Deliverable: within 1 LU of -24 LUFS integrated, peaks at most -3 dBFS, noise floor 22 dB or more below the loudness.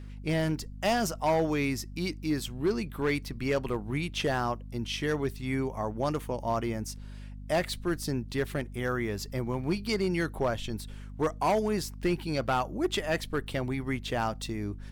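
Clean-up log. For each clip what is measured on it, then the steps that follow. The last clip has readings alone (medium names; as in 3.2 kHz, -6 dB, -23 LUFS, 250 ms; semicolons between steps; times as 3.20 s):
clipped samples 0.8%; clipping level -20.5 dBFS; hum 50 Hz; highest harmonic 250 Hz; hum level -40 dBFS; loudness -31.0 LUFS; peak level -20.5 dBFS; loudness target -24.0 LUFS
-> clip repair -20.5 dBFS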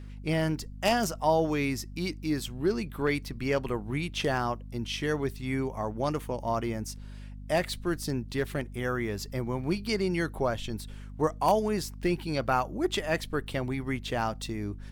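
clipped samples 0.0%; hum 50 Hz; highest harmonic 250 Hz; hum level -40 dBFS
-> de-hum 50 Hz, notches 5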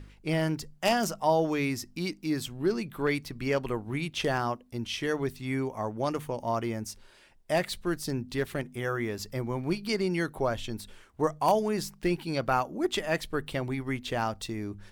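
hum not found; loudness -30.5 LUFS; peak level -11.0 dBFS; loudness target -24.0 LUFS
-> trim +6.5 dB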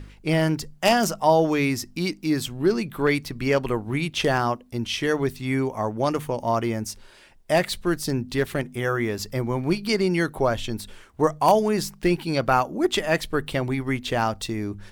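loudness -24.0 LUFS; peak level -4.5 dBFS; noise floor -51 dBFS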